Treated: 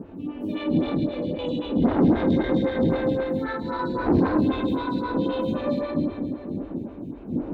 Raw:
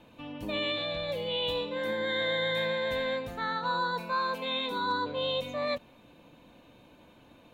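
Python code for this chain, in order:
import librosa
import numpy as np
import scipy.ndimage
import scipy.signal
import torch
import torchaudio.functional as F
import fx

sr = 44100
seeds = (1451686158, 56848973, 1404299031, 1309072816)

y = fx.dmg_wind(x, sr, seeds[0], corner_hz=220.0, level_db=-28.0)
y = fx.filter_lfo_lowpass(y, sr, shape='square', hz=fx.line((0.52, 2.4), (2.63, 8.7)), low_hz=350.0, high_hz=4800.0, q=1.1, at=(0.52, 2.63), fade=0.02)
y = fx.peak_eq(y, sr, hz=280.0, db=13.5, octaves=1.2)
y = fx.rev_plate(y, sr, seeds[1], rt60_s=2.4, hf_ratio=0.85, predelay_ms=0, drr_db=-4.0)
y = fx.quant_dither(y, sr, seeds[2], bits=12, dither='triangular')
y = fx.tube_stage(y, sr, drive_db=11.0, bias=0.35)
y = scipy.signal.sosfilt(scipy.signal.butter(2, 41.0, 'highpass', fs=sr, output='sos'), y)
y = fx.high_shelf(y, sr, hz=4400.0, db=-7.0)
y = fx.stagger_phaser(y, sr, hz=3.8)
y = y * librosa.db_to_amplitude(-2.0)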